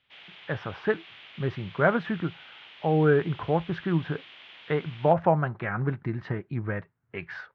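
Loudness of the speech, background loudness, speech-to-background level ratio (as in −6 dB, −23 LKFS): −28.0 LKFS, −46.5 LKFS, 18.5 dB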